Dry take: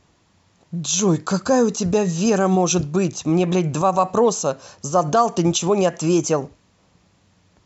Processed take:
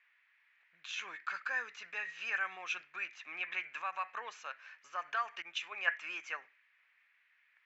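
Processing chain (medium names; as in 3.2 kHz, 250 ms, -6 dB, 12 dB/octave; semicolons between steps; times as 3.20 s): Butterworth band-pass 2 kHz, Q 2.4; 5.42–5.94 s: three bands expanded up and down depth 100%; trim +2 dB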